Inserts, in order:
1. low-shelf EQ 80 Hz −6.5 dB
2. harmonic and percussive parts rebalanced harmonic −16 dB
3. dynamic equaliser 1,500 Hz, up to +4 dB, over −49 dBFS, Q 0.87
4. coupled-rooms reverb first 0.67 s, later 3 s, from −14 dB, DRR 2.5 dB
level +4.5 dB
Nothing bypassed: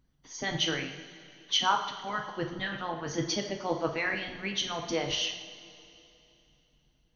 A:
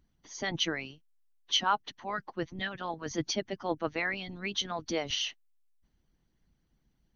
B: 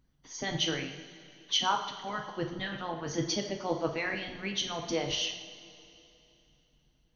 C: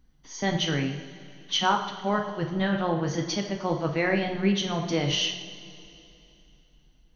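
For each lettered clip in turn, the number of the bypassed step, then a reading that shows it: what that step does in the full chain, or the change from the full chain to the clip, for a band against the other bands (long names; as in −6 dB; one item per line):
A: 4, change in momentary loudness spread −9 LU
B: 3, 2 kHz band −2.5 dB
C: 2, 125 Hz band +7.5 dB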